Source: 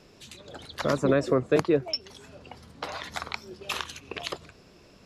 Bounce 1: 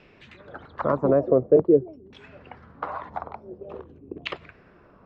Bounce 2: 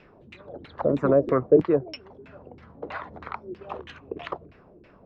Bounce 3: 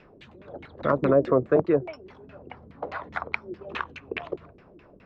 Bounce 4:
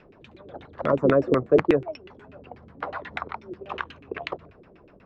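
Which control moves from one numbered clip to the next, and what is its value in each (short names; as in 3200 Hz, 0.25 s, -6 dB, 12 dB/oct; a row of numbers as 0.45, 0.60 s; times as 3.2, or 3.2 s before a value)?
LFO low-pass, rate: 0.47, 3.1, 4.8, 8.2 Hz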